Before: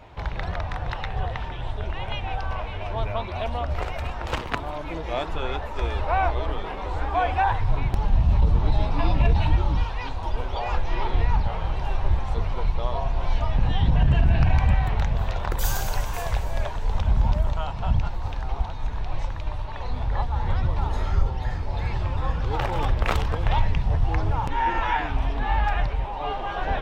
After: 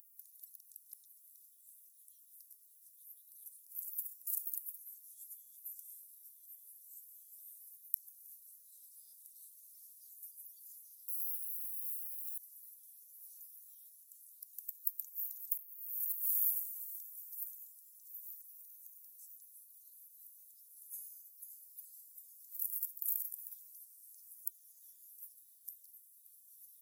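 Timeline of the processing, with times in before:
0:11.08–0:12.38: linearly interpolated sample-rate reduction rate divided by 3×
whole clip: inverse Chebyshev high-pass filter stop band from 2,800 Hz, stop band 80 dB; first difference; compressor whose output falls as the input rises −55 dBFS, ratio −1; level +15.5 dB

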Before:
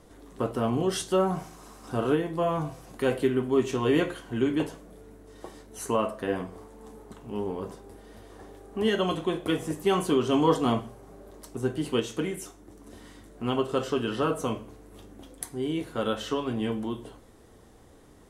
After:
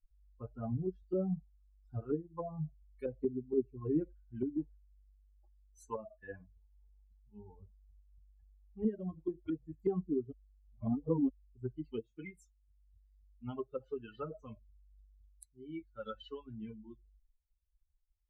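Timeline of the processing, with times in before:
0:10.32–0:11.29: reverse
whole clip: spectral dynamics exaggerated over time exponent 3; treble cut that deepens with the level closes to 340 Hz, closed at −31.5 dBFS; high-shelf EQ 2,900 Hz −10.5 dB

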